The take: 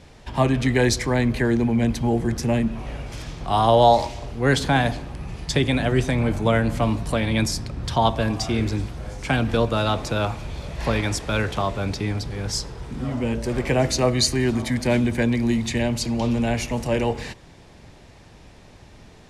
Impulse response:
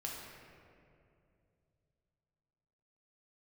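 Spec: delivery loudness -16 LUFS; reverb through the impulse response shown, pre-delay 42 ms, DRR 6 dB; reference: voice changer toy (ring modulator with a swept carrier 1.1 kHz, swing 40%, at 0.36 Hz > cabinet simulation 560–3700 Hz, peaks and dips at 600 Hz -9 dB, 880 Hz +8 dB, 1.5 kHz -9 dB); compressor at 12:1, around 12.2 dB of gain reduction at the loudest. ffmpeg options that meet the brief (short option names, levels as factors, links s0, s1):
-filter_complex "[0:a]acompressor=threshold=0.0794:ratio=12,asplit=2[s0][s1];[1:a]atrim=start_sample=2205,adelay=42[s2];[s1][s2]afir=irnorm=-1:irlink=0,volume=0.501[s3];[s0][s3]amix=inputs=2:normalize=0,aeval=exprs='val(0)*sin(2*PI*1100*n/s+1100*0.4/0.36*sin(2*PI*0.36*n/s))':c=same,highpass=560,equalizer=f=600:t=q:w=4:g=-9,equalizer=f=880:t=q:w=4:g=8,equalizer=f=1500:t=q:w=4:g=-9,lowpass=f=3700:w=0.5412,lowpass=f=3700:w=1.3066,volume=4.73"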